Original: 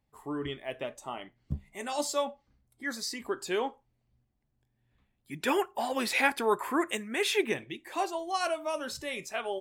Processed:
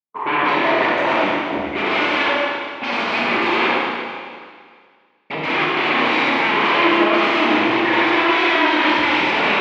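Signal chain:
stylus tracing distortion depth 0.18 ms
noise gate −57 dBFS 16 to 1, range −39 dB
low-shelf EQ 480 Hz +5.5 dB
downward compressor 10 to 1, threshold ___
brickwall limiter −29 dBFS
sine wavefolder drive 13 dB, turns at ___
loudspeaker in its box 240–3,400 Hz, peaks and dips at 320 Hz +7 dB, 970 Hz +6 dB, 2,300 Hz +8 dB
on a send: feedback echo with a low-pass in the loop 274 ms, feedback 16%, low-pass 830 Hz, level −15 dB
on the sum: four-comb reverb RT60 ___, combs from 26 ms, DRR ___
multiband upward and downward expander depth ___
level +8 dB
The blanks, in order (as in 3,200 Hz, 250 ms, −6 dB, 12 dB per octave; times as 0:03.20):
−27 dBFS, −29 dBFS, 2.7 s, −5 dB, 40%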